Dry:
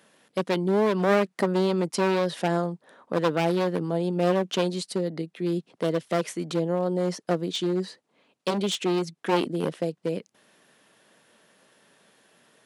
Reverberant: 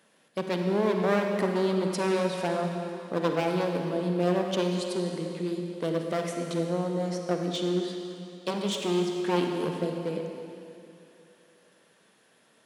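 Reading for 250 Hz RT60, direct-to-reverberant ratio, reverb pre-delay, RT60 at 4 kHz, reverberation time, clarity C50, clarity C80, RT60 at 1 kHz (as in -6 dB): 2.7 s, 2.5 dB, 31 ms, 2.6 s, 2.8 s, 3.0 dB, 4.0 dB, 2.8 s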